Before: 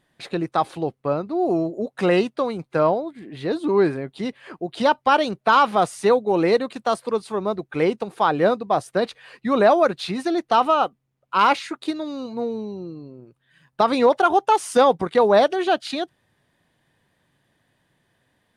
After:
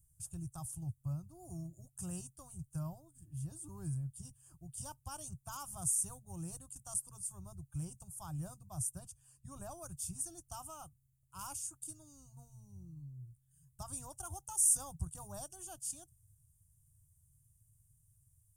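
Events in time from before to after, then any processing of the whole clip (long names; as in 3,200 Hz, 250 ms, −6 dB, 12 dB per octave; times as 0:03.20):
0:08.99–0:09.82: high-shelf EQ 8,200 Hz −6.5 dB
whole clip: inverse Chebyshev band-stop filter 210–4,300 Hz, stop band 40 dB; level +8.5 dB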